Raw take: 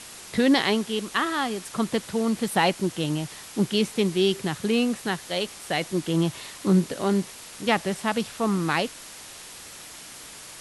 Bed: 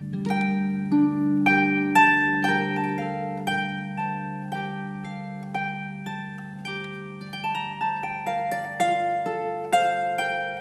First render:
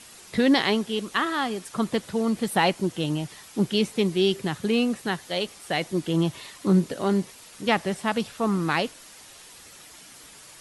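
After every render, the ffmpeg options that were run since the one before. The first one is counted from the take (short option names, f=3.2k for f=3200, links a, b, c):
-af "afftdn=nr=7:nf=-43"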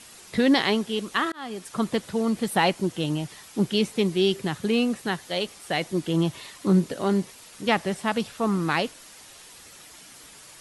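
-filter_complex "[0:a]asplit=2[a][b];[a]atrim=end=1.32,asetpts=PTS-STARTPTS,afade=t=out:st=1.316:d=0.004:c=hsin[c];[b]atrim=start=1.32,asetpts=PTS-STARTPTS,afade=t=in:d=0.49:c=qsin[d];[c][d]concat=n=2:v=0:a=1"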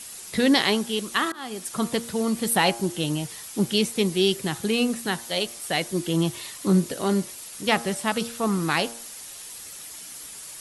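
-af "aemphasis=mode=production:type=50kf,bandreject=f=116.6:t=h:w=4,bandreject=f=233.2:t=h:w=4,bandreject=f=349.8:t=h:w=4,bandreject=f=466.4:t=h:w=4,bandreject=f=583:t=h:w=4,bandreject=f=699.6:t=h:w=4,bandreject=f=816.2:t=h:w=4,bandreject=f=932.8:t=h:w=4,bandreject=f=1.0494k:t=h:w=4,bandreject=f=1.166k:t=h:w=4,bandreject=f=1.2826k:t=h:w=4,bandreject=f=1.3992k:t=h:w=4,bandreject=f=1.5158k:t=h:w=4,bandreject=f=1.6324k:t=h:w=4"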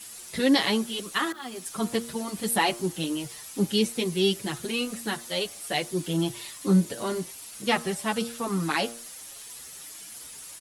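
-filter_complex "[0:a]acrusher=bits=8:mix=0:aa=0.000001,asplit=2[a][b];[b]adelay=6.8,afreqshift=1.6[c];[a][c]amix=inputs=2:normalize=1"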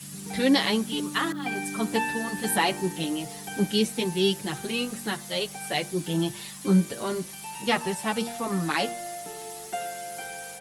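-filter_complex "[1:a]volume=-12.5dB[a];[0:a][a]amix=inputs=2:normalize=0"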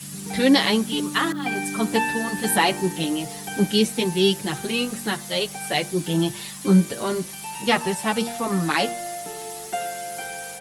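-af "volume=4.5dB"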